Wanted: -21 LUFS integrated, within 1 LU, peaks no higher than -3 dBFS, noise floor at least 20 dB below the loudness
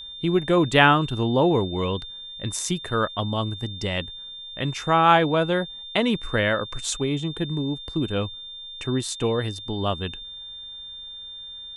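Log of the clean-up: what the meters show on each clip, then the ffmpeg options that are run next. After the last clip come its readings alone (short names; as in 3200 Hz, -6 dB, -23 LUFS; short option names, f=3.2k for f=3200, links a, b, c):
steady tone 3600 Hz; tone level -36 dBFS; loudness -23.5 LUFS; peak -1.5 dBFS; loudness target -21.0 LUFS
-> -af "bandreject=f=3.6k:w=30"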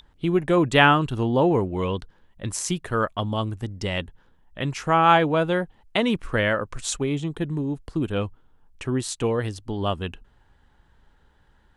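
steady tone none; loudness -23.5 LUFS; peak -1.5 dBFS; loudness target -21.0 LUFS
-> -af "volume=2.5dB,alimiter=limit=-3dB:level=0:latency=1"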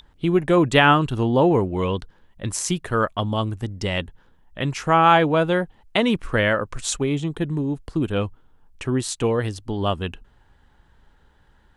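loudness -21.5 LUFS; peak -3.0 dBFS; noise floor -57 dBFS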